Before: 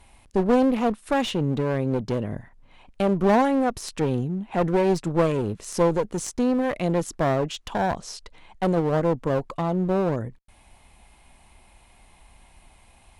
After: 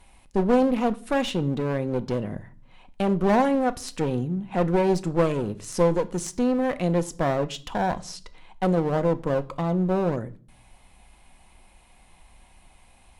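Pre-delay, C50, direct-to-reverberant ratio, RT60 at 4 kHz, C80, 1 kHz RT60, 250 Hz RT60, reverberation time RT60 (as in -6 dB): 4 ms, 19.5 dB, 10.0 dB, 0.45 s, 25.0 dB, 0.40 s, 0.75 s, 0.45 s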